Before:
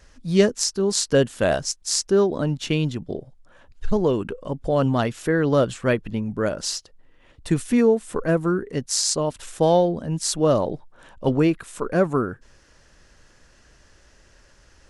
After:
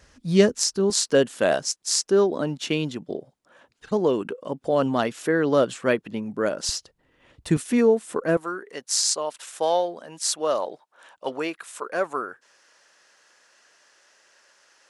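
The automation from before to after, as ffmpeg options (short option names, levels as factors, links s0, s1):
-af "asetnsamples=n=441:p=0,asendcmd='0.9 highpass f 230;6.69 highpass f 62;7.57 highpass f 220;8.37 highpass f 650',highpass=58"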